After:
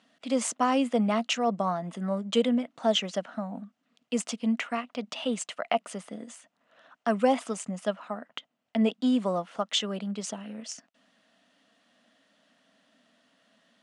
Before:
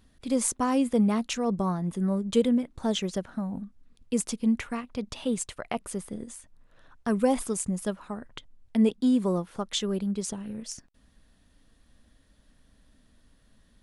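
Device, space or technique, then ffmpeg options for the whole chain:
television speaker: -filter_complex "[0:a]highpass=f=210:w=0.5412,highpass=f=210:w=1.3066,equalizer=f=370:t=q:w=4:g=-10,equalizer=f=670:t=q:w=4:g=10,equalizer=f=1.3k:t=q:w=4:g=5,equalizer=f=2k:t=q:w=4:g=4,equalizer=f=2.9k:t=q:w=4:g=8,lowpass=f=8k:w=0.5412,lowpass=f=8k:w=1.3066,asettb=1/sr,asplit=3[a][b][c];[a]atrim=end=7.324[d];[b]atrim=start=7.32:end=8.9,asetpts=PTS-STARTPTS,afade=t=in:d=0.004:c=qsin,afade=t=out:st=1.576:d=0.004:c=qsin,highshelf=f=6.2k:g=-5[e];[c]atrim=start=8.896[f];[d][e]acrossfade=d=0.004:c1=hsin:c2=qsin[g];[g][f]acrossfade=d=0.004:c1=qsin:c2=hsin"

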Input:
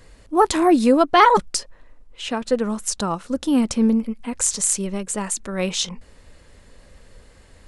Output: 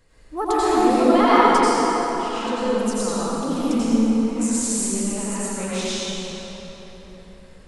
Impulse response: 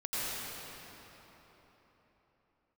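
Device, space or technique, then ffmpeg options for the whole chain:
cathedral: -filter_complex "[1:a]atrim=start_sample=2205[a];[0:a][a]afir=irnorm=-1:irlink=0,volume=-7dB"

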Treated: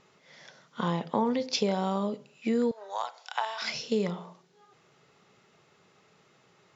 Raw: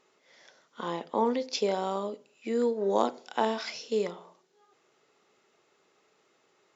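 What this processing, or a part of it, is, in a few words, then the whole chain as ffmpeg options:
jukebox: -filter_complex "[0:a]lowpass=6.9k,lowshelf=f=220:t=q:w=1.5:g=10,acompressor=threshold=-30dB:ratio=3,asettb=1/sr,asplit=3[a][b][c];[a]atrim=end=2.714[d];[b]atrim=start=2.71:end=3.62,asetpts=PTS-STARTPTS,afade=t=in:d=0.004:c=qsin,afade=t=out:st=0.906:d=0.004:c=qsin,highpass=f=770:w=0.5412,highpass=f=770:w=1.3066[e];[c]atrim=start=3.616[f];[d][e]acrossfade=d=0.004:c1=hsin:c2=qsin[g];[g][f]acrossfade=d=0.004:c1=qsin:c2=hsin,volume=5.5dB"

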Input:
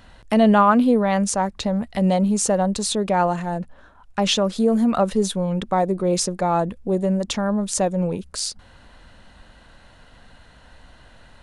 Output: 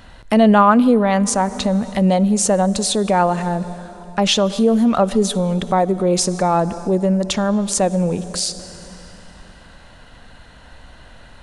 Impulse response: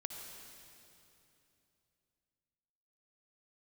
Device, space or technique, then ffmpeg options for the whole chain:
ducked reverb: -filter_complex "[0:a]asplit=3[a][b][c];[1:a]atrim=start_sample=2205[d];[b][d]afir=irnorm=-1:irlink=0[e];[c]apad=whole_len=503787[f];[e][f]sidechaincompress=threshold=-24dB:ratio=8:attack=8:release=150,volume=-5dB[g];[a][g]amix=inputs=2:normalize=0,volume=2.5dB"

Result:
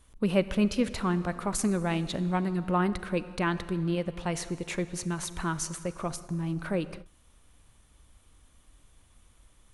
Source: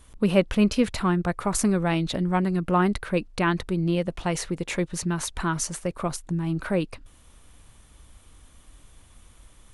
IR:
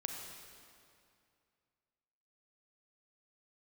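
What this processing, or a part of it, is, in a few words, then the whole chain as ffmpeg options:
keyed gated reverb: -filter_complex "[0:a]asplit=3[a][b][c];[1:a]atrim=start_sample=2205[d];[b][d]afir=irnorm=-1:irlink=0[e];[c]apad=whole_len=429186[f];[e][f]sidechaingate=range=-33dB:threshold=-41dB:ratio=16:detection=peak,volume=-7.5dB[g];[a][g]amix=inputs=2:normalize=0,volume=-7.5dB"

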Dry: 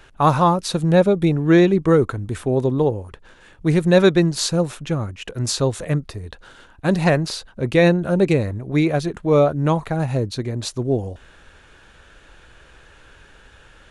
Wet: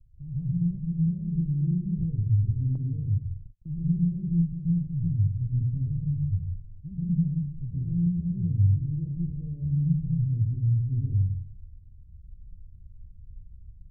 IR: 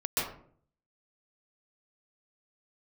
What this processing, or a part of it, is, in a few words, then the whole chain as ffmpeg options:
club heard from the street: -filter_complex "[0:a]alimiter=limit=-14.5dB:level=0:latency=1,lowpass=f=130:w=0.5412,lowpass=f=130:w=1.3066[a];[1:a]atrim=start_sample=2205[b];[a][b]afir=irnorm=-1:irlink=0,asettb=1/sr,asplit=3[c][d][e];[c]atrim=end=2.754[f];[d]atrim=start=2.75:end=3.66,asetpts=PTS-STARTPTS,afade=t=in:d=0.004:c=qsin,afade=t=out:st=0.906:d=0.004:c=qsin,agate=range=-33dB:threshold=-36dB:ratio=16:detection=peak[g];[e]atrim=start=3.656[h];[f][g]acrossfade=d=0.004:c1=hsin:c2=qsin[i];[i][h]acrossfade=d=0.004:c1=qsin:c2=hsin,volume=-2.5dB"

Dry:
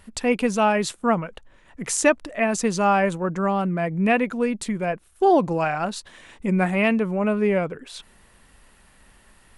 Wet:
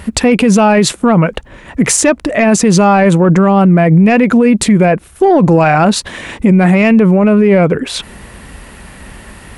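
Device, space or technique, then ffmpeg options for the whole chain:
mastering chain: -af "highpass=42,equalizer=f=2.2k:t=o:w=0.7:g=3.5,acompressor=threshold=-26dB:ratio=1.5,asoftclip=type=tanh:threshold=-13.5dB,tiltshelf=f=650:g=4,alimiter=level_in=22.5dB:limit=-1dB:release=50:level=0:latency=1,volume=-1dB"

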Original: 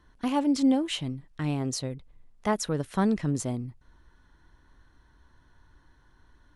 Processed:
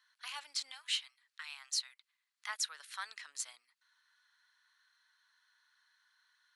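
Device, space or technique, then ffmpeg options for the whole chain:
headphones lying on a table: -filter_complex "[0:a]asettb=1/sr,asplit=3[a][b][c];[a]atrim=end=0.714[d];[b]atrim=start=0.71:end=2.49,asetpts=PTS-STARTPTS,afade=t=in:d=0.004:c=qsin,afade=t=out:st=1.776:d=0.004:c=qsin,highpass=f=800:w=0.5412,highpass=f=800:w=1.3066[e];[c]atrim=start=2.486[f];[d][e]acrossfade=d=0.004:c1=hsin:c2=qsin[g];[g][f]acrossfade=d=0.004:c1=qsin:c2=hsin,highpass=f=1.4k:w=0.5412,highpass=f=1.4k:w=1.3066,equalizer=f=4.3k:t=o:w=0.35:g=6.5,volume=-3dB"

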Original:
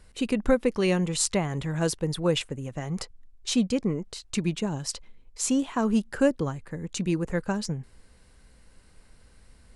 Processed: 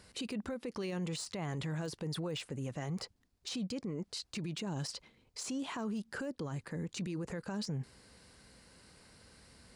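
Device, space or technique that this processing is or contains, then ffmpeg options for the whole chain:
broadcast voice chain: -af "highpass=100,deesser=0.8,acompressor=threshold=-28dB:ratio=4,equalizer=f=4.7k:t=o:w=0.52:g=5.5,alimiter=level_in=8.5dB:limit=-24dB:level=0:latency=1:release=32,volume=-8.5dB,volume=1dB"

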